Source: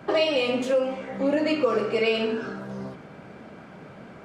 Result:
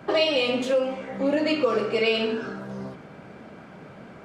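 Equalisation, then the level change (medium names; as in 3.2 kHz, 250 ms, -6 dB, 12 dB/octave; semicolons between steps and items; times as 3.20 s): dynamic bell 3.7 kHz, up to +5 dB, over -44 dBFS, Q 1.7; 0.0 dB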